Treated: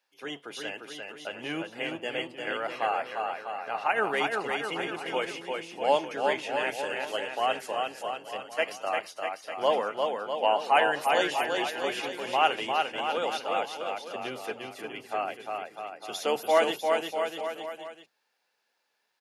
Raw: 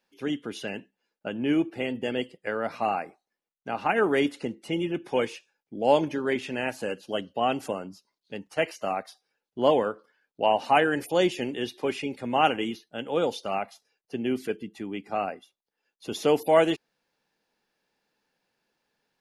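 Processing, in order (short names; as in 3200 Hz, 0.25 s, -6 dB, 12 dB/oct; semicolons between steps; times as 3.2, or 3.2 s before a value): octaver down 1 oct, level +2 dB; HPF 630 Hz 12 dB/oct; on a send: bouncing-ball echo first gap 0.35 s, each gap 0.85×, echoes 5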